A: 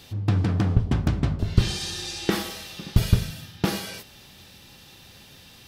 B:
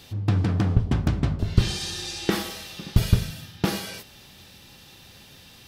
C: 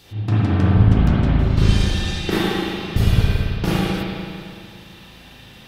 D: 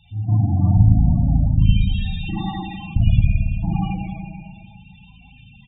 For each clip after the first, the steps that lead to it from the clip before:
nothing audible
spring tank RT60 2.3 s, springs 37/55 ms, chirp 55 ms, DRR -9 dB; gain -2 dB
fixed phaser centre 1500 Hz, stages 6; loudest bins only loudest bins 16; echo 81 ms -15 dB; gain +1.5 dB

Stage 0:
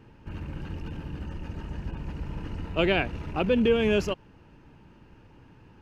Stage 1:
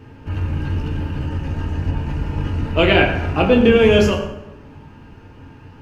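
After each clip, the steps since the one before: reverb RT60 1.0 s, pre-delay 5 ms, DRR -0.5 dB; gain +8 dB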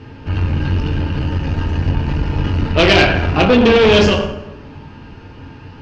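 tube stage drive 14 dB, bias 0.5; synth low-pass 4700 Hz, resonance Q 1.8; gain +7.5 dB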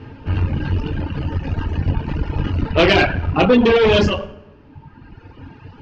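reverb removal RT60 1.7 s; high shelf 4600 Hz -10 dB

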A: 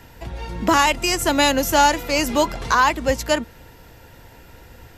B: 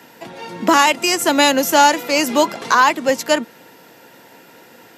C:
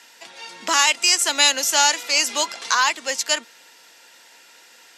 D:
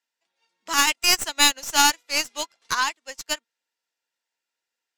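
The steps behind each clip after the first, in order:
HPF 190 Hz 24 dB/oct; gain +3.5 dB
weighting filter ITU-R 468; gain -8 dB
tracing distortion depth 0.032 ms; upward expander 2.5:1, over -38 dBFS

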